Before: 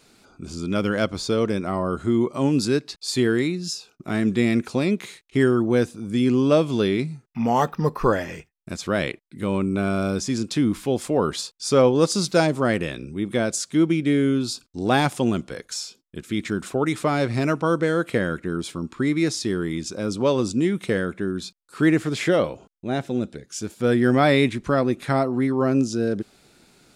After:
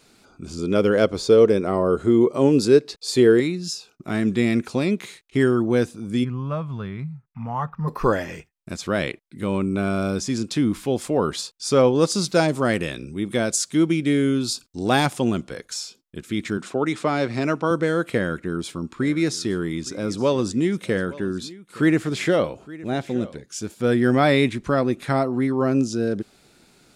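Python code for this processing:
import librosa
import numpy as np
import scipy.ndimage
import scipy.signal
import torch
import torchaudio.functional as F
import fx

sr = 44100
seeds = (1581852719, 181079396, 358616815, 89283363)

y = fx.peak_eq(x, sr, hz=450.0, db=10.5, octaves=0.73, at=(0.58, 3.4))
y = fx.curve_eq(y, sr, hz=(150.0, 320.0, 780.0, 1100.0, 5200.0), db=(0, -20, -9, -2, -24), at=(6.23, 7.87), fade=0.02)
y = fx.high_shelf(y, sr, hz=4000.0, db=5.5, at=(12.48, 15.06))
y = fx.bandpass_edges(y, sr, low_hz=150.0, high_hz=7600.0, at=(16.57, 17.71))
y = fx.echo_single(y, sr, ms=866, db=-19.5, at=(19.0, 23.42), fade=0.02)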